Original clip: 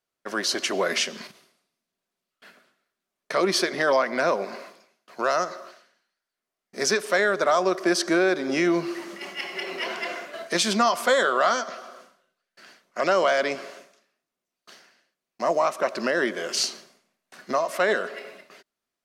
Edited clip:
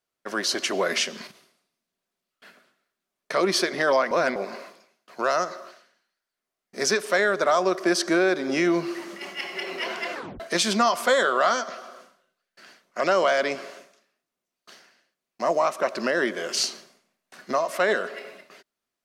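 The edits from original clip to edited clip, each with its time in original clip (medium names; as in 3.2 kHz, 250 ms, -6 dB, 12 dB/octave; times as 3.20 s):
4.11–4.36 s: reverse
10.13 s: tape stop 0.27 s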